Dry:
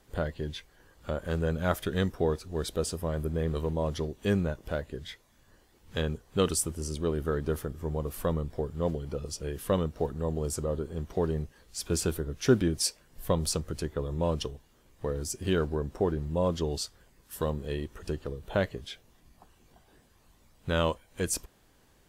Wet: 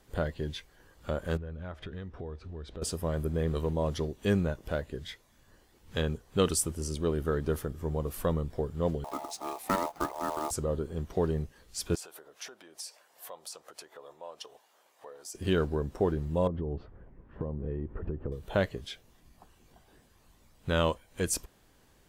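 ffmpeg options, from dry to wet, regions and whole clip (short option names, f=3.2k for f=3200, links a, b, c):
-filter_complex "[0:a]asettb=1/sr,asplit=3[a][b][c];[a]atrim=end=1.374[d];[b]atrim=start=1.37:end=2.82,asetpts=PTS-STARTPTS,afade=t=in:d=0.004:c=qsin,afade=t=out:st=1.446:d=0.004:c=qsin,lowpass=3k,equalizer=f=73:t=o:w=0.72:g=8.5,acompressor=threshold=-39dB:ratio=4:attack=3.2:release=140:knee=1:detection=peak[e];[c]atrim=start=2.816[f];[d][e]acrossfade=d=0.004:c1=hsin:c2=qsin[g];[g][f]acrossfade=d=0.004:c1=qsin:c2=hsin,asettb=1/sr,asplit=3[h][i][j];[h]atrim=end=9.044[k];[i]atrim=start=9.04:end=10.51,asetpts=PTS-STARTPTS,afade=t=in:d=0.004:c=qsin,afade=t=out:st=1.466:d=0.004:c=qsin,aeval=exprs='val(0)*sin(2*PI*770*n/s)':c=same,acrusher=bits=3:mode=log:mix=0:aa=0.000001[l];[j]atrim=start=10.506[m];[k][l]acrossfade=d=0.004:c1=hsin:c2=qsin[n];[n][m]acrossfade=d=0.004:c1=qsin:c2=hsin,asettb=1/sr,asplit=3[o][p][q];[o]atrim=end=11.954[r];[p]atrim=start=11.95:end=15.35,asetpts=PTS-STARTPTS,afade=t=in:d=0.004:c=qsin,afade=t=out:st=3.396:d=0.004:c=qsin,acompressor=threshold=-37dB:ratio=20:attack=3.2:release=140:knee=1:detection=peak,highpass=f=710:t=q:w=2[s];[q]atrim=start=15.346[t];[r][s]acrossfade=d=0.004:c1=hsin:c2=qsin[u];[u][t]acrossfade=d=0.004:c1=qsin:c2=hsin,asettb=1/sr,asplit=3[v][w][x];[v]atrim=end=16.474[y];[w]atrim=start=16.47:end=18.32,asetpts=PTS-STARTPTS,afade=t=in:d=0.004:c=qsin,afade=t=out:st=1.846:d=0.004:c=qsin,lowpass=f=2.3k:w=0.5412,lowpass=f=2.3k:w=1.3066,tiltshelf=f=1.2k:g=9.5,acompressor=threshold=-29dB:ratio=16:attack=3.2:release=140:knee=1:detection=peak[z];[x]atrim=start=18.316[aa];[y][z]acrossfade=d=0.004:c1=hsin:c2=qsin[ab];[ab][aa]acrossfade=d=0.004:c1=qsin:c2=hsin"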